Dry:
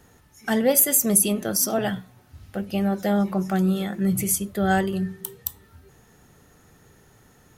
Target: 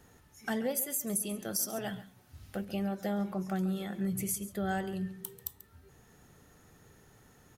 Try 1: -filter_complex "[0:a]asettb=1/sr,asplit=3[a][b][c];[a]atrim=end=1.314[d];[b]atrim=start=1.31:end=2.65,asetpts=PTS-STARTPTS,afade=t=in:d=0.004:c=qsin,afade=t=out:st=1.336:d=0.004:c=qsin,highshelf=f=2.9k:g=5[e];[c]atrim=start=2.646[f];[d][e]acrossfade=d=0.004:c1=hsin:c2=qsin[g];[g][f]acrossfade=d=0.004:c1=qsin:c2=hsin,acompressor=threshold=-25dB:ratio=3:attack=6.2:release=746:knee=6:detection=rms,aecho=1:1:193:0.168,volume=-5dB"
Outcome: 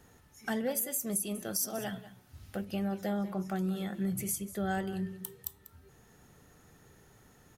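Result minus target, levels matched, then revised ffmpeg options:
echo 55 ms late
-filter_complex "[0:a]asettb=1/sr,asplit=3[a][b][c];[a]atrim=end=1.314[d];[b]atrim=start=1.31:end=2.65,asetpts=PTS-STARTPTS,afade=t=in:d=0.004:c=qsin,afade=t=out:st=1.336:d=0.004:c=qsin,highshelf=f=2.9k:g=5[e];[c]atrim=start=2.646[f];[d][e]acrossfade=d=0.004:c1=hsin:c2=qsin[g];[g][f]acrossfade=d=0.004:c1=qsin:c2=hsin,acompressor=threshold=-25dB:ratio=3:attack=6.2:release=746:knee=6:detection=rms,aecho=1:1:138:0.168,volume=-5dB"

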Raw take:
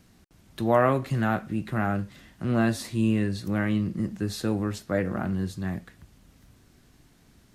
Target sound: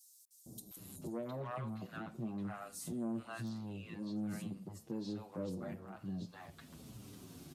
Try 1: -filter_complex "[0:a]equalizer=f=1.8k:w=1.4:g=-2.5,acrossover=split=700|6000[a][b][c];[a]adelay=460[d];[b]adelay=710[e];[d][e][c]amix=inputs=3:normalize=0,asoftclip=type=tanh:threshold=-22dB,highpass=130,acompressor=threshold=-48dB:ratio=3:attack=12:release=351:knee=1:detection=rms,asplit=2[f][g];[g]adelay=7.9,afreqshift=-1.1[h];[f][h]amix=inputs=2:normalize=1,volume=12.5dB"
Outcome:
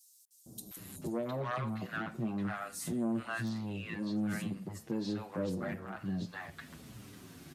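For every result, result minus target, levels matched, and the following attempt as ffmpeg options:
compressor: peak gain reduction -5.5 dB; 2000 Hz band +5.5 dB
-filter_complex "[0:a]equalizer=f=1.8k:w=1.4:g=-2.5,acrossover=split=700|6000[a][b][c];[a]adelay=460[d];[b]adelay=710[e];[d][e][c]amix=inputs=3:normalize=0,asoftclip=type=tanh:threshold=-22dB,highpass=130,acompressor=threshold=-56.5dB:ratio=3:attack=12:release=351:knee=1:detection=rms,asplit=2[f][g];[g]adelay=7.9,afreqshift=-1.1[h];[f][h]amix=inputs=2:normalize=1,volume=12.5dB"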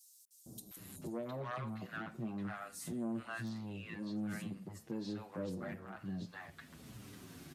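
2000 Hz band +6.0 dB
-filter_complex "[0:a]equalizer=f=1.8k:w=1.4:g=-12,acrossover=split=700|6000[a][b][c];[a]adelay=460[d];[b]adelay=710[e];[d][e][c]amix=inputs=3:normalize=0,asoftclip=type=tanh:threshold=-22dB,highpass=130,acompressor=threshold=-56.5dB:ratio=3:attack=12:release=351:knee=1:detection=rms,asplit=2[f][g];[g]adelay=7.9,afreqshift=-1.1[h];[f][h]amix=inputs=2:normalize=1,volume=12.5dB"

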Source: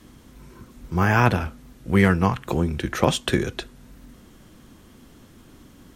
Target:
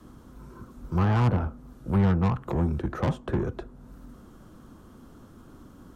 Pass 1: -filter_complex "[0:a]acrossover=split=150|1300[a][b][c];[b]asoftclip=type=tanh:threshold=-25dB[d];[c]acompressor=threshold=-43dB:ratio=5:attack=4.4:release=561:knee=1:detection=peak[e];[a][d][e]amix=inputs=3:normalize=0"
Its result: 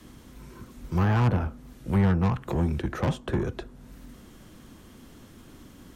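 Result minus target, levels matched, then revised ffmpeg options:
4000 Hz band +3.0 dB
-filter_complex "[0:a]acrossover=split=150|1300[a][b][c];[b]asoftclip=type=tanh:threshold=-25dB[d];[c]acompressor=threshold=-43dB:ratio=5:attack=4.4:release=561:knee=1:detection=peak,highshelf=f=1.7k:t=q:w=3:g=-7.5[e];[a][d][e]amix=inputs=3:normalize=0"

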